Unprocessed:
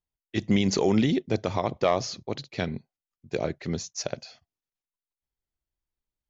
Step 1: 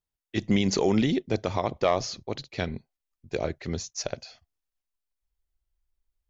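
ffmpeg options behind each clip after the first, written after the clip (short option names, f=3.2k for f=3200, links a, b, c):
-af "asubboost=boost=6:cutoff=64"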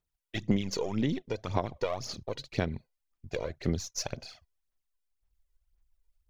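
-af "aeval=exprs='if(lt(val(0),0),0.708*val(0),val(0))':c=same,acompressor=threshold=-31dB:ratio=6,aphaser=in_gain=1:out_gain=1:delay=2.1:decay=0.61:speed=1.9:type=sinusoidal"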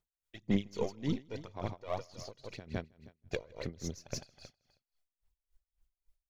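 -af "aecho=1:1:159|318|477|636:0.398|0.131|0.0434|0.0143,aeval=exprs='val(0)*pow(10,-24*(0.5-0.5*cos(2*PI*3.6*n/s))/20)':c=same"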